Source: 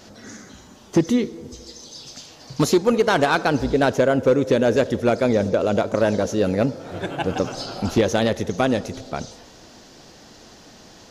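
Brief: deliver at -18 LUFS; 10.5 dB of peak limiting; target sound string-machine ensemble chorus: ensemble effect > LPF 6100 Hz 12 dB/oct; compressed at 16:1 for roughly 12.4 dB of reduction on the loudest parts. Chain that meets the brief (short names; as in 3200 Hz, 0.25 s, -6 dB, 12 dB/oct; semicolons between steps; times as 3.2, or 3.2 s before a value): compressor 16:1, threshold -25 dBFS; limiter -24 dBFS; ensemble effect; LPF 6100 Hz 12 dB/oct; gain +19.5 dB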